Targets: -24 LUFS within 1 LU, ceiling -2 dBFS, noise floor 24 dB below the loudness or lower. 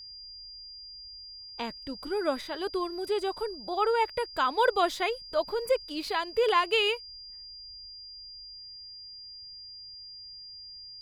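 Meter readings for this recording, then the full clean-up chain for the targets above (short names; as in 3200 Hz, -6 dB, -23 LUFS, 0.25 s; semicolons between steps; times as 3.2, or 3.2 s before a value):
steady tone 4800 Hz; tone level -43 dBFS; loudness -29.0 LUFS; peak -12.0 dBFS; loudness target -24.0 LUFS
-> notch 4800 Hz, Q 30; gain +5 dB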